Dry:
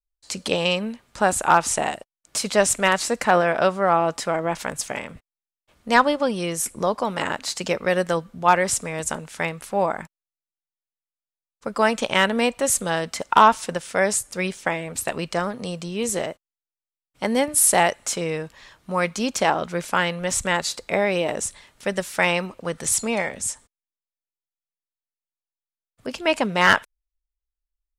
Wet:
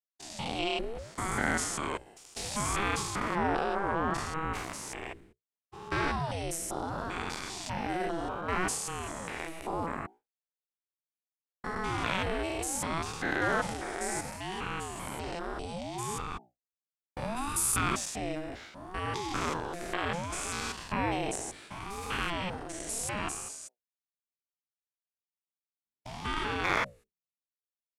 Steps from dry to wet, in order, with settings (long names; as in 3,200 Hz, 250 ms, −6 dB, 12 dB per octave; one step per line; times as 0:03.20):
spectrum averaged block by block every 200 ms
mains-hum notches 60/120/180/240/300/360 Hz
in parallel at −3 dB: downward compressor, threshold −33 dBFS, peak gain reduction 16.5 dB
on the sum: transient designer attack −1 dB, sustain +6 dB
downward expander −39 dBFS
ring modulator whose carrier an LFO sweeps 400 Hz, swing 60%, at 0.68 Hz
level −6 dB